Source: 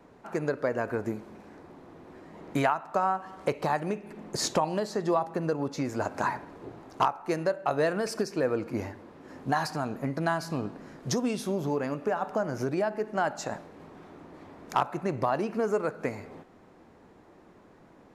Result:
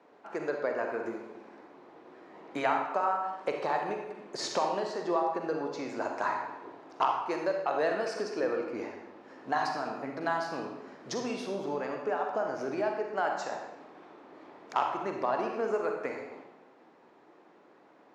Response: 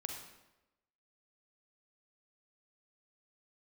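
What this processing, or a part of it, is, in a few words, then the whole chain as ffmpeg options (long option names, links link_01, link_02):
supermarket ceiling speaker: -filter_complex "[0:a]highpass=340,lowpass=5100[link_01];[1:a]atrim=start_sample=2205[link_02];[link_01][link_02]afir=irnorm=-1:irlink=0"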